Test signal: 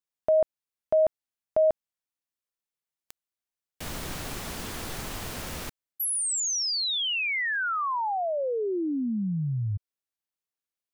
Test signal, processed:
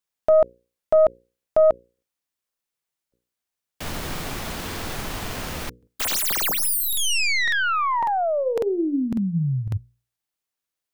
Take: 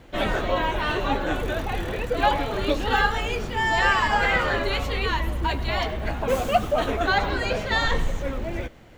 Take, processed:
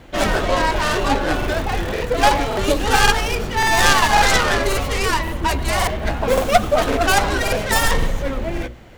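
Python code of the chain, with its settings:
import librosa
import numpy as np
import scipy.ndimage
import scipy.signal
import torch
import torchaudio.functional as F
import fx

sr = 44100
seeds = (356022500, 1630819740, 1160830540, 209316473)

y = fx.tracing_dist(x, sr, depth_ms=0.3)
y = fx.hum_notches(y, sr, base_hz=60, count=9)
y = fx.buffer_crackle(y, sr, first_s=0.83, period_s=0.55, block=2048, kind='repeat')
y = F.gain(torch.from_numpy(y), 6.0).numpy()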